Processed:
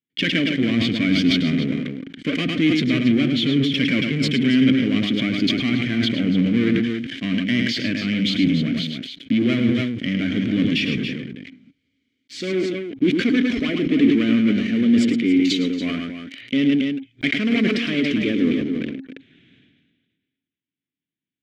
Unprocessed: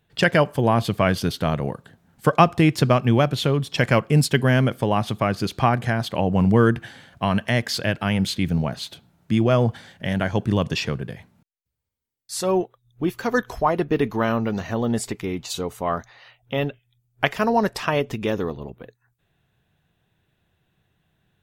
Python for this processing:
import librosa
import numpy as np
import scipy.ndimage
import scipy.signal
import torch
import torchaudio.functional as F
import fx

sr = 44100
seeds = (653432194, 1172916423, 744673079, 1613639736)

p1 = scipy.signal.sosfilt(scipy.signal.butter(4, 7300.0, 'lowpass', fs=sr, output='sos'), x)
p2 = fx.leveller(p1, sr, passes=5)
p3 = fx.vowel_filter(p2, sr, vowel='i')
p4 = p3 + fx.echo_multitap(p3, sr, ms=(106, 279), db=(-7.0, -9.0), dry=0)
y = fx.sustainer(p4, sr, db_per_s=38.0)